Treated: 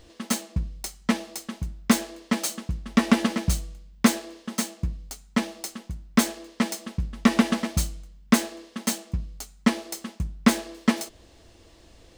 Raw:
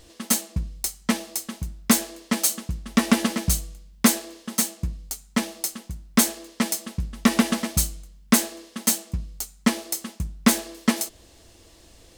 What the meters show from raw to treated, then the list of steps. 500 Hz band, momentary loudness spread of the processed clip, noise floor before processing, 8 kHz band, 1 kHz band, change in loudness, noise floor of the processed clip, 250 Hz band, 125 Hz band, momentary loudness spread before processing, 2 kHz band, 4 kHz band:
0.0 dB, 13 LU, -53 dBFS, -7.5 dB, -0.5 dB, -2.0 dB, -54 dBFS, 0.0 dB, 0.0 dB, 11 LU, -1.0 dB, -3.0 dB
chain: peaking EQ 14 kHz -12 dB 1.5 oct

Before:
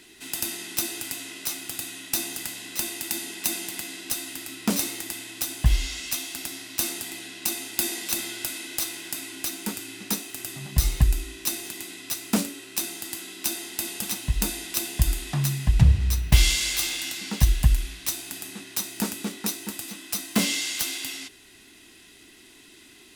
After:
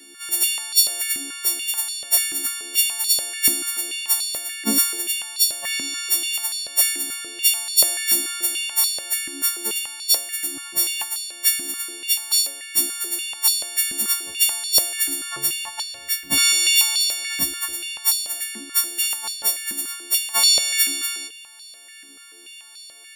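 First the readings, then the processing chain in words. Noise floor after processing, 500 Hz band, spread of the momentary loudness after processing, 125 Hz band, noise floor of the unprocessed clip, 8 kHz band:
-44 dBFS, -0.5 dB, 9 LU, under -25 dB, -51 dBFS, +9.5 dB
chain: partials quantised in pitch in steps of 4 st; step-sequenced high-pass 6.9 Hz 270–4200 Hz; trim -4.5 dB

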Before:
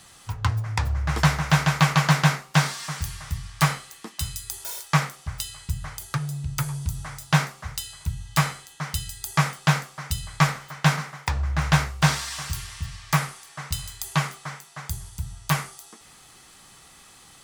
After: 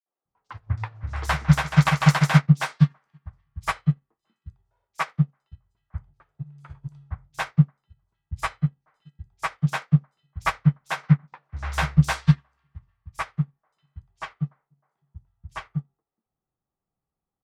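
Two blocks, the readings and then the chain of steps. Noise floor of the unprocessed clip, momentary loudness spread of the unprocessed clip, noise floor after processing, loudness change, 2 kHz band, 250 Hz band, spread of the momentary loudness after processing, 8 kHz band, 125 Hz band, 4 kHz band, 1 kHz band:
-51 dBFS, 14 LU, under -85 dBFS, +1.5 dB, -3.5 dB, +3.0 dB, 21 LU, -11.0 dB, +2.0 dB, -7.0 dB, -3.0 dB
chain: level-controlled noise filter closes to 580 Hz, open at -15.5 dBFS; three bands offset in time highs, mids, lows 60/250 ms, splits 310/4700 Hz; upward expansion 2.5:1, over -38 dBFS; trim +6 dB

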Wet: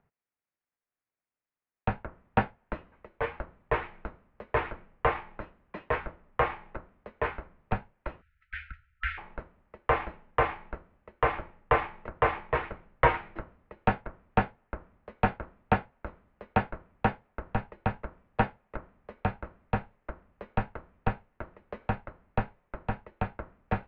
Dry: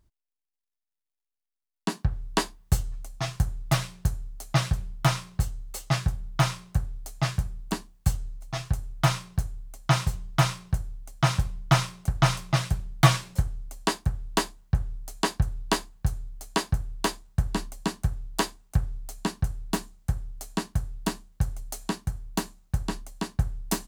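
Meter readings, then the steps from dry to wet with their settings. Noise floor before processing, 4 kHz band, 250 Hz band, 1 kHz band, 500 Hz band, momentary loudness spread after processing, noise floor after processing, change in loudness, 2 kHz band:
under -85 dBFS, -16.0 dB, -5.5 dB, +1.5 dB, +2.5 dB, 17 LU, under -85 dBFS, -3.5 dB, 0.0 dB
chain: wow and flutter 26 cents; spectral selection erased 8.21–9.18 s, 200–1500 Hz; in parallel at +2 dB: compression, threshold -34 dBFS, peak gain reduction 20.5 dB; on the sum: mistuned SSB -200 Hz 220–2500 Hz

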